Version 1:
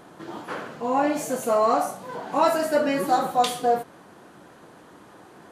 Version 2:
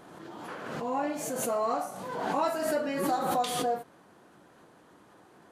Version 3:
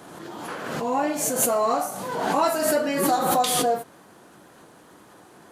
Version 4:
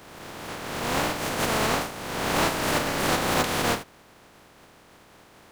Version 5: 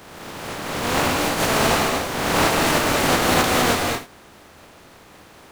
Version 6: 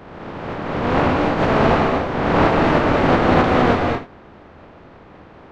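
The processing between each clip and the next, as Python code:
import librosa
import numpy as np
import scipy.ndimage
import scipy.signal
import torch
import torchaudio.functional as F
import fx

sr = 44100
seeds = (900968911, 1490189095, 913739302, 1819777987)

y1 = fx.pre_swell(x, sr, db_per_s=34.0)
y1 = y1 * librosa.db_to_amplitude(-9.0)
y2 = fx.high_shelf(y1, sr, hz=5400.0, db=8.5)
y2 = fx.wow_flutter(y2, sr, seeds[0], rate_hz=2.1, depth_cents=29.0)
y2 = y2 * librosa.db_to_amplitude(6.5)
y3 = fx.spec_flatten(y2, sr, power=0.12)
y3 = fx.lowpass(y3, sr, hz=1000.0, slope=6)
y3 = y3 * librosa.db_to_amplitude(7.0)
y4 = fx.rev_gated(y3, sr, seeds[1], gate_ms=250, shape='rising', drr_db=1.5)
y4 = y4 * librosa.db_to_amplitude(4.0)
y5 = fx.spacing_loss(y4, sr, db_at_10k=42)
y5 = y5 * librosa.db_to_amplitude(7.0)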